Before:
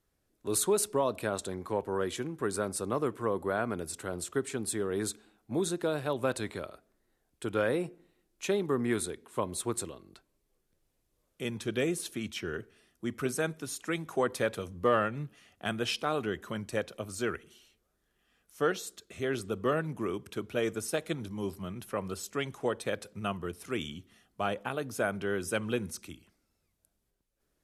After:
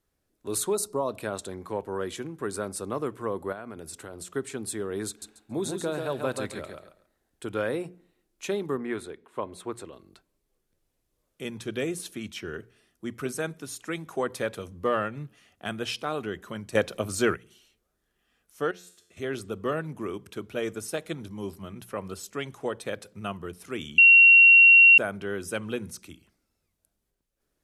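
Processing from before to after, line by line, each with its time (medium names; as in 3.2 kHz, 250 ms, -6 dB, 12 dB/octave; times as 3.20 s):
0.75–1.08 s: time-frequency box 1.4–3.7 kHz -13 dB
3.52–4.30 s: compression 5:1, threshold -35 dBFS
5.08–7.48 s: feedback delay 138 ms, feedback 21%, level -5 dB
8.77–9.93 s: tone controls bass -6 dB, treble -13 dB
16.75–17.34 s: gain +8.5 dB
18.71–19.17 s: feedback comb 88 Hz, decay 0.65 s, mix 80%
23.98–24.98 s: bleep 2.74 kHz -10.5 dBFS
whole clip: hum notches 60/120/180 Hz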